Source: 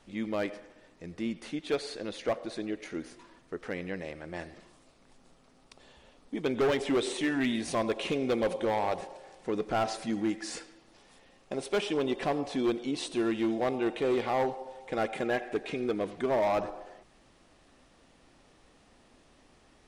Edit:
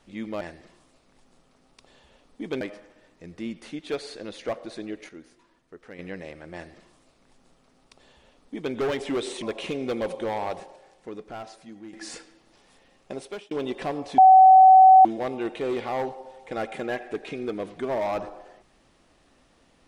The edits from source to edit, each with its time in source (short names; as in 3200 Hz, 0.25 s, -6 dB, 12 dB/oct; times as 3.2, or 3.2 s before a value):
2.89–3.79 gain -8 dB
4.34–6.54 copy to 0.41
7.22–7.83 cut
8.91–10.34 fade out quadratic, to -13 dB
11.53–11.92 fade out
12.59–13.46 bleep 757 Hz -8.5 dBFS